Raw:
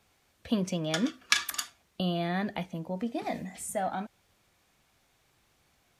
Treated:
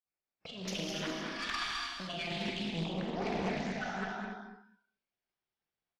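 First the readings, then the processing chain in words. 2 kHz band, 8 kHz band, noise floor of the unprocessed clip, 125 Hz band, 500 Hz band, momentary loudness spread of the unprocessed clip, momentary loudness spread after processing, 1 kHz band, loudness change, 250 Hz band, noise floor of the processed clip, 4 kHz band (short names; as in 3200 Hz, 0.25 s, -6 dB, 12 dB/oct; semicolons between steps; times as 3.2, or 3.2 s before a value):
-3.0 dB, -11.0 dB, -70 dBFS, -5.0 dB, -4.0 dB, 10 LU, 9 LU, -4.0 dB, -5.0 dB, -6.0 dB, under -85 dBFS, -3.0 dB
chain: random spectral dropouts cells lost 37%; steep low-pass 5700 Hz 96 dB/oct; spectral gain 2.29–2.67, 400–2900 Hz -29 dB; expander -59 dBFS; bell 66 Hz -8.5 dB 2.2 oct; negative-ratio compressor -41 dBFS, ratio -1; tube stage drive 30 dB, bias 0.55; doubler 42 ms -10.5 dB; feedback echo 0.209 s, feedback 25%, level -5.5 dB; non-linear reverb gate 0.33 s flat, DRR -3 dB; spectral noise reduction 17 dB; Doppler distortion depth 0.41 ms; gain +1.5 dB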